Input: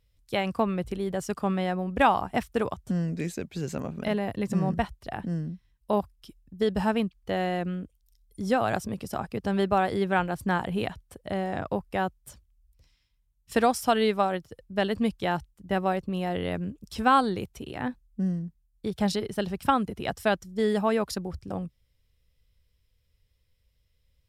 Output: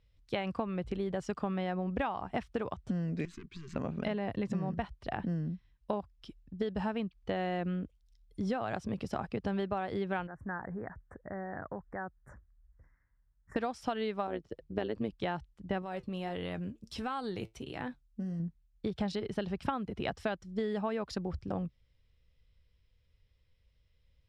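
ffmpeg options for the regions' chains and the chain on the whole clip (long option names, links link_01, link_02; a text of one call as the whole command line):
ffmpeg -i in.wav -filter_complex "[0:a]asettb=1/sr,asplit=3[link_01][link_02][link_03];[link_01]atrim=end=3.254[link_04];[link_02]atrim=start=3.25:end=3.76,asetpts=PTS-STARTPTS,afade=type=in:duration=0.004:curve=qsin,afade=type=out:start_time=0.506:duration=0.004:curve=qsin,acompressor=threshold=-35dB:ratio=5:attack=3.2:release=140:knee=1:detection=peak,aeval=exprs='(tanh(70.8*val(0)+0.75)-tanh(0.75))/70.8':channel_layout=same,asuperstop=centerf=640:order=12:qfactor=1.1[link_05];[link_03]atrim=start=3.756[link_06];[link_04][link_05]acrossfade=duration=0.004:curve1=hsin:curve2=qsin[link_07];[link_07][link_06]acrossfade=duration=0.004:curve1=qsin:curve2=hsin,asettb=1/sr,asplit=3[link_08][link_09][link_10];[link_08]atrim=end=10.274[link_11];[link_09]atrim=start=10.27:end=13.56,asetpts=PTS-STARTPTS,afade=type=in:duration=0.004:curve=qsin,afade=type=out:start_time=3.286:duration=0.004:curve=qsin,highshelf=frequency=2400:width_type=q:width=3:gain=-10.5,acompressor=threshold=-46dB:ratio=2:attack=3.2:release=140:knee=1:detection=peak,asuperstop=centerf=3500:order=8:qfactor=0.84[link_12];[link_10]atrim=start=13.556[link_13];[link_11][link_12]acrossfade=duration=0.004:curve1=hsin:curve2=qsin[link_14];[link_14][link_13]acrossfade=duration=0.004:curve1=qsin:curve2=hsin,asettb=1/sr,asplit=3[link_15][link_16][link_17];[link_15]atrim=end=14.274[link_18];[link_16]atrim=start=14.27:end=15.13,asetpts=PTS-STARTPTS,afade=type=in:duration=0.004:curve=qsin,afade=type=out:start_time=0.856:duration=0.004:curve=qsin,equalizer=frequency=380:width=1.9:gain=8.5,tremolo=f=110:d=0.75[link_19];[link_17]atrim=start=15.126[link_20];[link_18][link_19]acrossfade=duration=0.004:curve1=hsin:curve2=qsin[link_21];[link_21][link_20]acrossfade=duration=0.004:curve1=qsin:curve2=hsin,asettb=1/sr,asplit=3[link_22][link_23][link_24];[link_22]atrim=end=15.824[link_25];[link_23]atrim=start=15.82:end=18.4,asetpts=PTS-STARTPTS,afade=type=in:duration=0.004:curve=qsin,afade=type=out:start_time=2.576:duration=0.004:curve=qsin,aemphasis=mode=production:type=50fm,acompressor=threshold=-28dB:ratio=4:attack=3.2:release=140:knee=1:detection=peak,flanger=delay=6:depth=3:regen=68:speed=1.5:shape=sinusoidal[link_26];[link_24]atrim=start=18.396[link_27];[link_25][link_26]acrossfade=duration=0.004:curve1=hsin:curve2=qsin[link_28];[link_28][link_27]acrossfade=duration=0.004:curve1=qsin:curve2=hsin,lowpass=4200,acompressor=threshold=-30dB:ratio=12" out.wav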